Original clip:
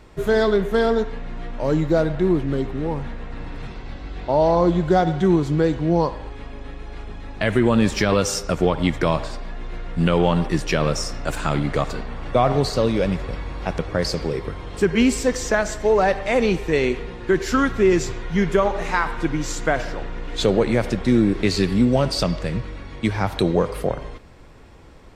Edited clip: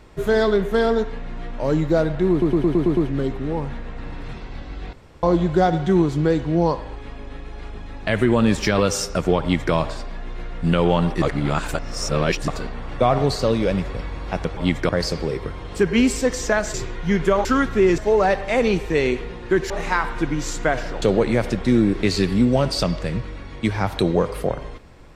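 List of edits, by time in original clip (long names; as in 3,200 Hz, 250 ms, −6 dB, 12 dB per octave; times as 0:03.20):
0:02.31: stutter 0.11 s, 7 plays
0:04.27–0:04.57: fill with room tone
0:08.75–0:09.07: duplicate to 0:13.91
0:10.56–0:11.82: reverse
0:15.76–0:17.48: swap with 0:18.01–0:18.72
0:20.04–0:20.42: remove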